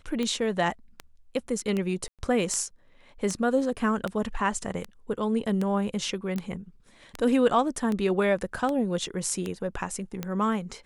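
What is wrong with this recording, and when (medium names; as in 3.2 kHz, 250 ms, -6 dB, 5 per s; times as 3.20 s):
tick 78 rpm -17 dBFS
2.08–2.19 s: dropout 107 ms
6.36 s: pop -22 dBFS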